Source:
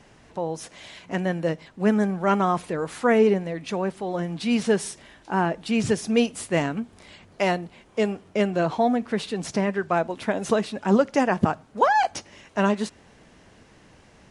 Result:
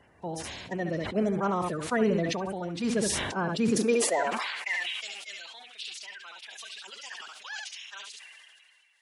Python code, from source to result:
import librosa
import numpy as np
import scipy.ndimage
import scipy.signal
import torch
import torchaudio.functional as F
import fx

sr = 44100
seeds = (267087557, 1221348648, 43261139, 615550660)

p1 = fx.spec_quant(x, sr, step_db=30)
p2 = fx.filter_sweep_highpass(p1, sr, from_hz=70.0, to_hz=3000.0, start_s=5.08, end_s=7.75, q=2.3)
p3 = p2 + fx.echo_single(p2, sr, ms=111, db=-10.5, dry=0)
p4 = fx.stretch_vocoder(p3, sr, factor=0.63)
p5 = fx.sustainer(p4, sr, db_per_s=28.0)
y = F.gain(torch.from_numpy(p5), -7.0).numpy()